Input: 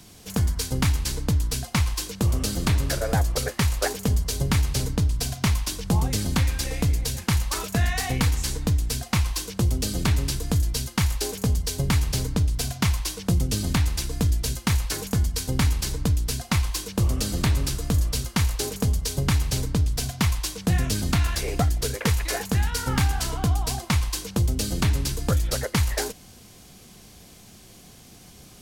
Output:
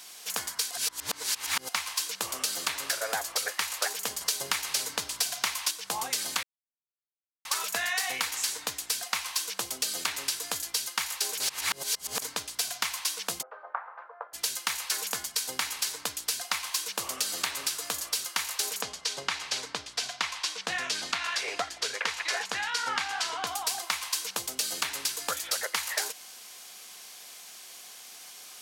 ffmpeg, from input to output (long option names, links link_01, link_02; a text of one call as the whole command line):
ffmpeg -i in.wav -filter_complex "[0:a]asplit=3[link_01][link_02][link_03];[link_01]afade=type=out:start_time=13.41:duration=0.02[link_04];[link_02]asuperpass=centerf=850:order=8:qfactor=0.9,afade=type=in:start_time=13.41:duration=0.02,afade=type=out:start_time=14.33:duration=0.02[link_05];[link_03]afade=type=in:start_time=14.33:duration=0.02[link_06];[link_04][link_05][link_06]amix=inputs=3:normalize=0,asettb=1/sr,asplit=3[link_07][link_08][link_09];[link_07]atrim=end=18.824[link_10];[link_08]atrim=start=18.82:end=23.47,asetpts=PTS-STARTPTS,afade=type=in:duration=0.004:curve=qsin,afade=type=out:start_time=4.646:duration=0.004:curve=qsin,lowpass=5400[link_11];[link_09]atrim=start=23.466[link_12];[link_10][link_11]acrossfade=duration=0.004:curve1=hsin:curve2=qsin[link_13];[link_13][link_12]acrossfade=duration=0.004:curve1=qsin:curve2=hsin,asplit=9[link_14][link_15][link_16][link_17][link_18][link_19][link_20][link_21][link_22];[link_14]atrim=end=0.712[link_23];[link_15]atrim=start=0.708:end=1.692,asetpts=PTS-STARTPTS,areverse[link_24];[link_16]atrim=start=1.688:end=4.212[link_25];[link_17]atrim=start=4.208:end=5.712,asetpts=PTS-STARTPTS,volume=5.5dB[link_26];[link_18]atrim=start=5.708:end=6.43,asetpts=PTS-STARTPTS,afade=type=out:start_time=0.718:duration=0.004:curve=hsin[link_27];[link_19]atrim=start=6.43:end=7.45,asetpts=PTS-STARTPTS,volume=0[link_28];[link_20]atrim=start=7.45:end=11.402,asetpts=PTS-STARTPTS,afade=type=in:duration=0.004:curve=hsin[link_29];[link_21]atrim=start=11.398:end=12.222,asetpts=PTS-STARTPTS,areverse[link_30];[link_22]atrim=start=12.218[link_31];[link_23][link_24]acrossfade=duration=0.004:curve1=hsin:curve2=hsin[link_32];[link_32][link_25]acrossfade=duration=0.004:curve1=hsin:curve2=hsin[link_33];[link_33][link_26]acrossfade=duration=0.004:curve1=hsin:curve2=hsin[link_34];[link_27][link_28][link_29]concat=n=3:v=0:a=1[link_35];[link_34][link_35]acrossfade=duration=0.004:curve1=hsin:curve2=hsin[link_36];[link_36][link_30]acrossfade=duration=0.004:curve1=hsin:curve2=hsin[link_37];[link_37][link_31]acrossfade=duration=0.004:curve1=hsin:curve2=hsin,highpass=970,acompressor=threshold=-31dB:ratio=6,volume=5dB" out.wav